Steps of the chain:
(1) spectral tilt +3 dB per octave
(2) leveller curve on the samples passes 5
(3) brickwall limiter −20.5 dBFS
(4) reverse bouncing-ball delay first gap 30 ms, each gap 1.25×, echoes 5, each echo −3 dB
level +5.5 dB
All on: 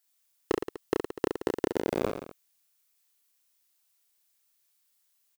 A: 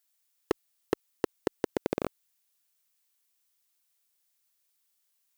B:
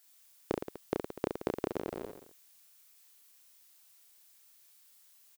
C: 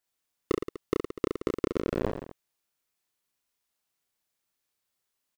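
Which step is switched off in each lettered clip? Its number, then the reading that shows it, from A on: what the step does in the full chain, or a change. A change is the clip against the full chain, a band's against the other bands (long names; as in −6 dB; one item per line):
4, echo-to-direct ratio 0.0 dB to none audible
2, 4 kHz band −2.5 dB
1, 125 Hz band +6.5 dB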